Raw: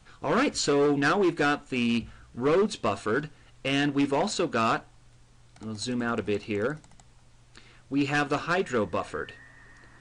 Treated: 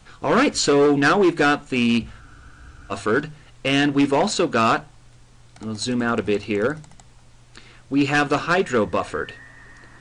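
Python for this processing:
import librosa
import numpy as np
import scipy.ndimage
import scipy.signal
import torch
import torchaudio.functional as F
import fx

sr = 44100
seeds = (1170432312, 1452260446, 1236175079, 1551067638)

y = fx.hum_notches(x, sr, base_hz=50, count=3)
y = fx.spec_freeze(y, sr, seeds[0], at_s=2.24, hold_s=0.68)
y = y * 10.0 ** (7.0 / 20.0)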